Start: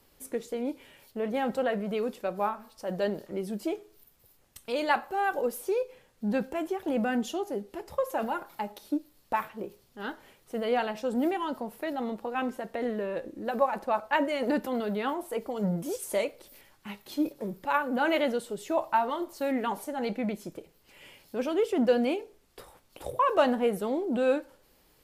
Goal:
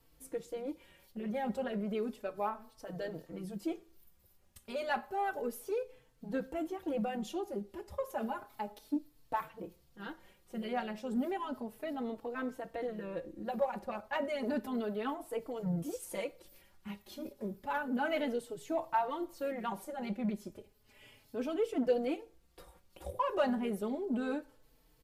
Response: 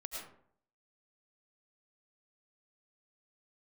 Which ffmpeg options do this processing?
-filter_complex "[0:a]asplit=2[link_01][link_02];[link_02]asetrate=37084,aresample=44100,atempo=1.18921,volume=-17dB[link_03];[link_01][link_03]amix=inputs=2:normalize=0,lowshelf=frequency=160:gain=9,asplit=2[link_04][link_05];[link_05]asoftclip=type=tanh:threshold=-23dB,volume=-8.5dB[link_06];[link_04][link_06]amix=inputs=2:normalize=0,asplit=2[link_07][link_08];[link_08]adelay=4,afreqshift=0.32[link_09];[link_07][link_09]amix=inputs=2:normalize=1,volume=-7.5dB"

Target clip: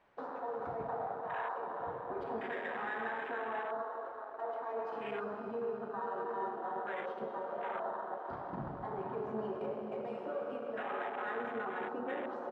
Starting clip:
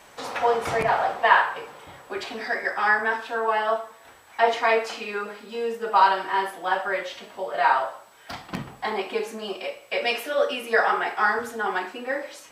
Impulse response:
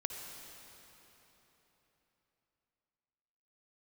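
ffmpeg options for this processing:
-filter_complex "[0:a]aemphasis=mode=reproduction:type=cd,asplit=2[link_01][link_02];[link_02]adelay=1399,volume=-18dB,highshelf=frequency=4000:gain=-31.5[link_03];[link_01][link_03]amix=inputs=2:normalize=0,areverse,acompressor=threshold=-31dB:ratio=5,areverse,alimiter=level_in=7dB:limit=-24dB:level=0:latency=1:release=99,volume=-7dB,adynamicsmooth=sensitivity=5:basefreq=2800[link_04];[1:a]atrim=start_sample=2205,asetrate=30429,aresample=44100[link_05];[link_04][link_05]afir=irnorm=-1:irlink=0,afwtdn=0.0112,volume=-1dB"

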